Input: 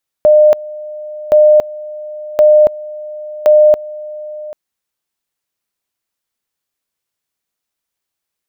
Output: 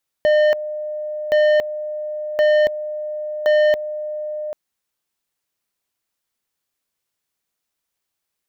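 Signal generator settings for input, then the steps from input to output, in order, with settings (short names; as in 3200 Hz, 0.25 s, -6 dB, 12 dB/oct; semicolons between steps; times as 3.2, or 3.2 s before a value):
two-level tone 606 Hz -3.5 dBFS, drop 20 dB, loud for 0.28 s, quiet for 0.79 s, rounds 4
soft clip -13 dBFS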